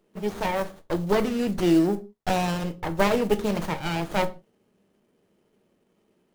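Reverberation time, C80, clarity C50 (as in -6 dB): not exponential, 23.0 dB, 18.0 dB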